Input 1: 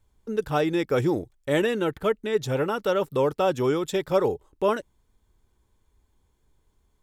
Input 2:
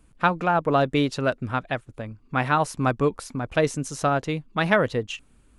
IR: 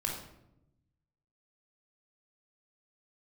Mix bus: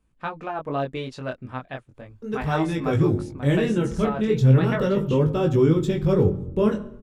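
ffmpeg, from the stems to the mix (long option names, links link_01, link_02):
-filter_complex "[0:a]asubboost=boost=11.5:cutoff=230,adelay=1950,volume=-1dB,asplit=2[link_01][link_02];[link_02]volume=-11dB[link_03];[1:a]bandreject=frequency=1400:width=21,dynaudnorm=framelen=100:gausssize=5:maxgain=4dB,volume=-8dB[link_04];[2:a]atrim=start_sample=2205[link_05];[link_03][link_05]afir=irnorm=-1:irlink=0[link_06];[link_01][link_04][link_06]amix=inputs=3:normalize=0,highshelf=frequency=8200:gain=-8.5,flanger=delay=18.5:depth=5:speed=0.36"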